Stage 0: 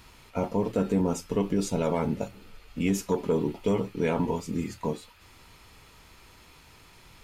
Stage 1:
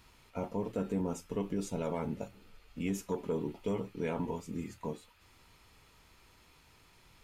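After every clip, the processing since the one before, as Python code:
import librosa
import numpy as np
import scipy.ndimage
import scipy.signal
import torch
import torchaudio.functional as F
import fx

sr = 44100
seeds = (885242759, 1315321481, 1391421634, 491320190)

y = fx.dynamic_eq(x, sr, hz=4700.0, q=2.4, threshold_db=-56.0, ratio=4.0, max_db=-4)
y = F.gain(torch.from_numpy(y), -8.5).numpy()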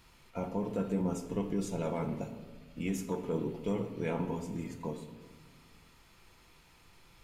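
y = fx.room_shoebox(x, sr, seeds[0], volume_m3=1300.0, walls='mixed', distance_m=0.81)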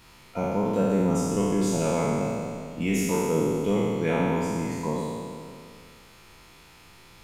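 y = fx.spec_trails(x, sr, decay_s=2.28)
y = fx.low_shelf(y, sr, hz=61.0, db=-6.5)
y = F.gain(torch.from_numpy(y), 6.5).numpy()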